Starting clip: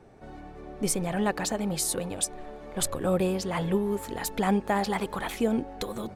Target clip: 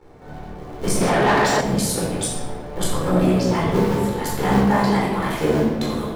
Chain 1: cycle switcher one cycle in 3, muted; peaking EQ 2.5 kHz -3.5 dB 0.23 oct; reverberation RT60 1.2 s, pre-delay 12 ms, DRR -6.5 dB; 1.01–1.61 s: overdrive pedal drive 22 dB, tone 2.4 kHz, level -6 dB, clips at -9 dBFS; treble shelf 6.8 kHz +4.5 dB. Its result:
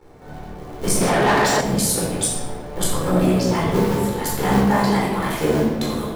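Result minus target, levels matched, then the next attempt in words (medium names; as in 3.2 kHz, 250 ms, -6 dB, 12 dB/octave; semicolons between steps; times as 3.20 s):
8 kHz band +3.5 dB
cycle switcher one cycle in 3, muted; peaking EQ 2.5 kHz -3.5 dB 0.23 oct; reverberation RT60 1.2 s, pre-delay 12 ms, DRR -6.5 dB; 1.01–1.61 s: overdrive pedal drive 22 dB, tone 2.4 kHz, level -6 dB, clips at -9 dBFS; treble shelf 6.8 kHz -2.5 dB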